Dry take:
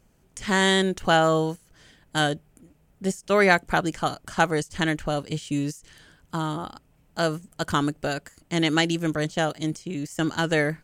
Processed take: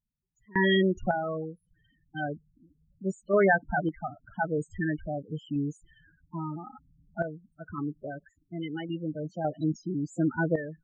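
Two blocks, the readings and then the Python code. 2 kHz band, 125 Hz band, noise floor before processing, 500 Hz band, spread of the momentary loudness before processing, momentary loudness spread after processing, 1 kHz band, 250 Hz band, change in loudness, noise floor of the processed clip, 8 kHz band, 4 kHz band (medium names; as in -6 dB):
-7.0 dB, -5.0 dB, -62 dBFS, -4.5 dB, 13 LU, 17 LU, -8.0 dB, -4.0 dB, -5.5 dB, -74 dBFS, under -20 dB, -13.0 dB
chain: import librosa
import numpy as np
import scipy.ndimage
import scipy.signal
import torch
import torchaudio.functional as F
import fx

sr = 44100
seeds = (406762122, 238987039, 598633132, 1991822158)

y = fx.spec_topn(x, sr, count=8)
y = fx.tremolo_random(y, sr, seeds[0], hz=1.8, depth_pct=95)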